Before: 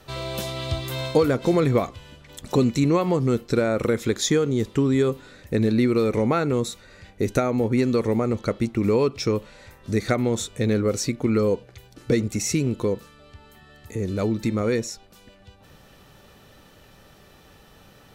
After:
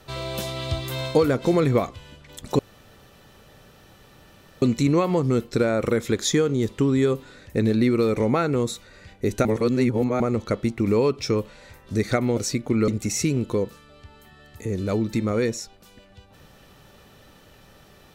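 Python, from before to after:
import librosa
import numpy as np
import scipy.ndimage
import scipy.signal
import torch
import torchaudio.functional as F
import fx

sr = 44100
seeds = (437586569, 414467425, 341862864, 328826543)

y = fx.edit(x, sr, fx.insert_room_tone(at_s=2.59, length_s=2.03),
    fx.reverse_span(start_s=7.42, length_s=0.75),
    fx.cut(start_s=10.34, length_s=0.57),
    fx.cut(start_s=11.42, length_s=0.76), tone=tone)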